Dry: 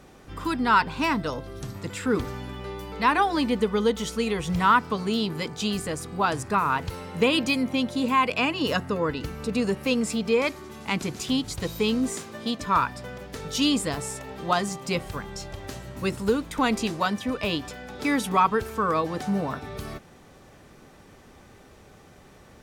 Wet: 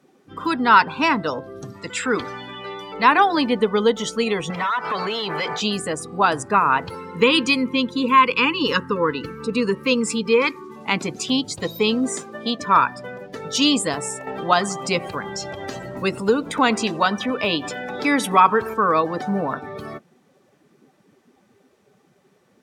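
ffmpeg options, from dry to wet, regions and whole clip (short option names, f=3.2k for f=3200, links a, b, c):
-filter_complex "[0:a]asettb=1/sr,asplit=3[a][b][c];[a]atrim=end=1.724[d];[b]atrim=start=1.72:end=2.94,asetpts=PTS-STARTPTS,afade=t=in:d=0.004:c=qsin,afade=t=out:st=1.216:d=0.004:c=qsin,lowpass=9.6k,tiltshelf=f=870:g=-4.5[e];[c]atrim=start=2.936[f];[d][e]acrossfade=d=0.004:c1=hsin:c2=qsin[g];[g][f]acrossfade=d=0.004:c1=qsin:c2=hsin,asettb=1/sr,asplit=3[h][i][j];[h]atrim=end=4.504[k];[i]atrim=start=4.5:end=5.61,asetpts=PTS-STARTPTS,afade=t=in:d=0.004:c=qsin,afade=t=out:st=1.106:d=0.004:c=qsin,equalizer=f=260:w=1.9:g=-11,acompressor=threshold=-32dB:ratio=8:attack=3.2:release=140:knee=1:detection=peak,asplit=2[l][m];[m]highpass=f=720:p=1,volume=24dB,asoftclip=type=tanh:threshold=-21dB[n];[l][n]amix=inputs=2:normalize=0,lowpass=f=2.7k:p=1,volume=-6dB[o];[j]atrim=start=5.606[p];[k][o]acrossfade=d=0.004:c1=hsin:c2=qsin[q];[q][p]acrossfade=d=0.004:c1=qsin:c2=hsin,asettb=1/sr,asplit=3[r][s][t];[r]atrim=end=6.954[u];[s]atrim=start=6.95:end=10.76,asetpts=PTS-STARTPTS,afade=t=in:d=0.004:c=qsin,afade=t=out:st=3.806:d=0.004:c=qsin,asuperstop=centerf=680:order=12:qfactor=2.3,equalizer=f=1.1k:w=5.4:g=2[v];[t]atrim=start=10.756[w];[u][v]acrossfade=d=0.004:c1=hsin:c2=qsin[x];[x][w]acrossfade=d=0.004:c1=qsin:c2=hsin,asettb=1/sr,asplit=3[y][z][aa];[y]atrim=end=14.274[ab];[z]atrim=start=14.27:end=18.74,asetpts=PTS-STARTPTS,afade=t=in:d=0.004:c=qsin,afade=t=out:st=4.466:d=0.004:c=qsin,acompressor=mode=upward:threshold=-26dB:ratio=2.5:attack=3.2:release=140:knee=2.83:detection=peak,aecho=1:1:90|180|270|360|450:0.0891|0.0517|0.03|0.0174|0.0101,atrim=end_sample=197127[ac];[aa]atrim=start=18.736[ad];[ab][ac]acrossfade=d=0.004:c1=hsin:c2=qsin[ae];[ae][ad]acrossfade=d=0.004:c1=qsin:c2=hsin,highpass=130,afftdn=nr=17:nf=-40,lowshelf=f=240:g=-7,volume=7dB"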